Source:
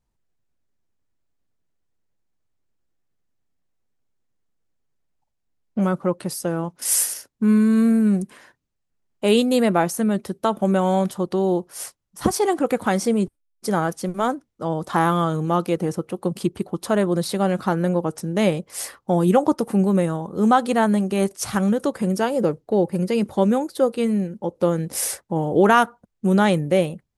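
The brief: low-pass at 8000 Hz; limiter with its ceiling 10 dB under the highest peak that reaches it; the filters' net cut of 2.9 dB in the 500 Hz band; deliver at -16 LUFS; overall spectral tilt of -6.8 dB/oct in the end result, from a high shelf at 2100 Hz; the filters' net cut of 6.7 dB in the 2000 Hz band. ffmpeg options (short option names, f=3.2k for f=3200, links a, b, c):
-af "lowpass=8k,equalizer=f=500:t=o:g=-3,equalizer=f=2k:t=o:g=-6.5,highshelf=f=2.1k:g=-5.5,volume=8.5dB,alimiter=limit=-5.5dB:level=0:latency=1"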